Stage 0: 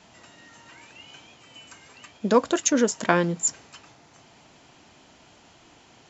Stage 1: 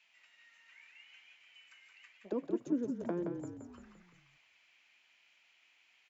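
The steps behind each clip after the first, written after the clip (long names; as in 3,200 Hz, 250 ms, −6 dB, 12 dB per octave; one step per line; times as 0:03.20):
high-shelf EQ 3,700 Hz +9 dB
envelope filter 310–2,500 Hz, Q 3.9, down, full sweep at −18.5 dBFS
echo with shifted repeats 172 ms, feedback 52%, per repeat −34 Hz, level −6 dB
level −8 dB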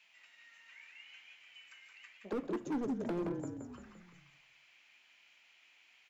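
hard clipping −35 dBFS, distortion −7 dB
on a send at −13 dB: convolution reverb RT60 0.45 s, pre-delay 4 ms
on the sum: level +3 dB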